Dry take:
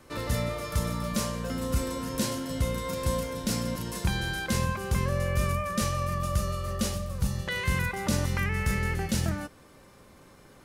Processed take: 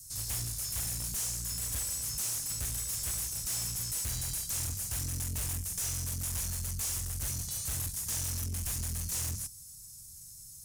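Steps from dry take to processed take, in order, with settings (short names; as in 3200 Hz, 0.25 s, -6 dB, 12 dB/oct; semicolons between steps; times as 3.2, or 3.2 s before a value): inverse Chebyshev band-stop 520–1500 Hz, stop band 80 dB; tone controls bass -6 dB, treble +12 dB; tube stage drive 39 dB, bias 0.25; gain +7 dB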